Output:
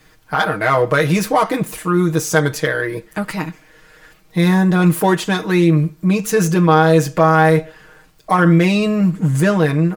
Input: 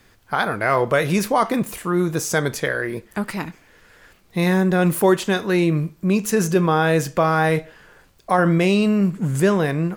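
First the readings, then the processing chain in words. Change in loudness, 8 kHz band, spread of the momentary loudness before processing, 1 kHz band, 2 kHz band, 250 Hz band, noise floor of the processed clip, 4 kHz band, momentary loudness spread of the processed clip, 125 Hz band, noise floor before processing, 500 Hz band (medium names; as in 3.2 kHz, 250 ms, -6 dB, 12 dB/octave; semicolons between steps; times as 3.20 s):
+4.0 dB, +2.5 dB, 9 LU, +4.5 dB, +3.5 dB, +4.5 dB, -51 dBFS, +3.5 dB, 10 LU, +6.0 dB, -55 dBFS, +3.0 dB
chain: self-modulated delay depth 0.053 ms; comb 6.4 ms, depth 84%; trim +1.5 dB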